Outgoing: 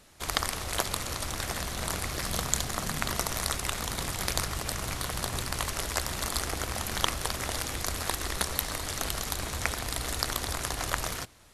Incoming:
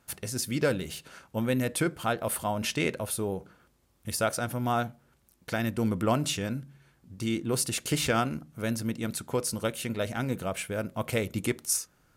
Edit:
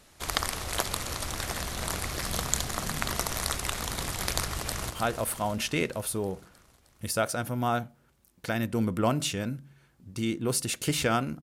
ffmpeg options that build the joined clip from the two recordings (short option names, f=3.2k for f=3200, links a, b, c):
-filter_complex "[0:a]apad=whole_dur=11.42,atrim=end=11.42,atrim=end=4.902[a];[1:a]atrim=start=1.938:end=8.46[b];[a][b]acrossfade=d=0.004:c1=hsin:c2=hsin,asplit=2[c][d];[d]afade=t=in:st=4.58:d=0.01,afade=t=out:st=4.9:d=0.01,aecho=0:1:310|620|930|1240|1550|1860|2170|2480|2790:0.398107|0.25877|0.1682|0.10933|0.0710646|0.046192|0.0300248|0.0195161|0.0126855[e];[c][e]amix=inputs=2:normalize=0"